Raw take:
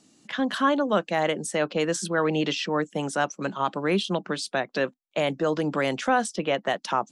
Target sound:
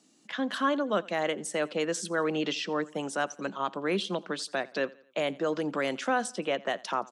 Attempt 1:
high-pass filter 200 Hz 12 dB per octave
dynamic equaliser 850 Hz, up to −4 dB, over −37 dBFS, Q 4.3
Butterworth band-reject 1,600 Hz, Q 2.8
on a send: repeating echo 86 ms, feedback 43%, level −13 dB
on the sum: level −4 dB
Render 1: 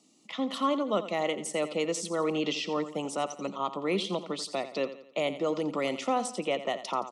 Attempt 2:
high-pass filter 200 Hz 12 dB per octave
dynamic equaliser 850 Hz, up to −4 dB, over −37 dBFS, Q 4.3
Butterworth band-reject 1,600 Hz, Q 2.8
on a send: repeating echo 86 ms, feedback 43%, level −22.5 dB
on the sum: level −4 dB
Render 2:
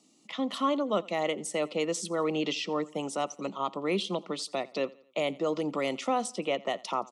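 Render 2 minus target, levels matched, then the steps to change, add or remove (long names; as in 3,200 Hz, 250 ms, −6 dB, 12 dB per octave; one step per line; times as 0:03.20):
2,000 Hz band −5.0 dB
remove: Butterworth band-reject 1,600 Hz, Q 2.8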